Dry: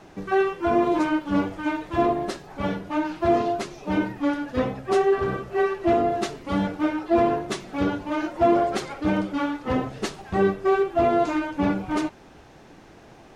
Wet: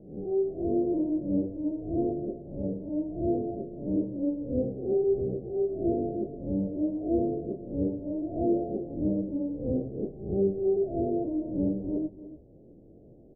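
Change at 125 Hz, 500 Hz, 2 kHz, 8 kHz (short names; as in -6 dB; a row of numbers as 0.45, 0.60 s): -3.0 dB, -6.0 dB, under -40 dB, under -35 dB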